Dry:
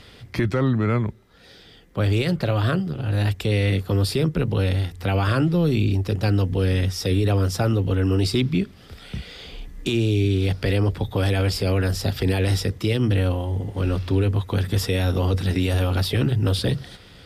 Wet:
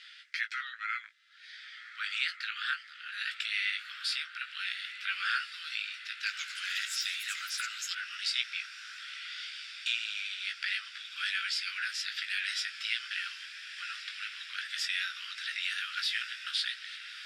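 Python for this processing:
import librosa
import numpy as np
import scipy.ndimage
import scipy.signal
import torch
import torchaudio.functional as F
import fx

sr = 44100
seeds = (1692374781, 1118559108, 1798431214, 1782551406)

y = scipy.signal.sosfilt(scipy.signal.butter(12, 1400.0, 'highpass', fs=sr, output='sos'), x)
y = fx.vibrato(y, sr, rate_hz=13.0, depth_cents=12.0)
y = fx.air_absorb(y, sr, metres=93.0)
y = fx.doubler(y, sr, ms=18.0, db=-7.5)
y = fx.echo_diffused(y, sr, ms=1404, feedback_pct=68, wet_db=-11.5)
y = fx.echo_pitch(y, sr, ms=232, semitones=6, count=3, db_per_echo=-6.0, at=(5.97, 8.44))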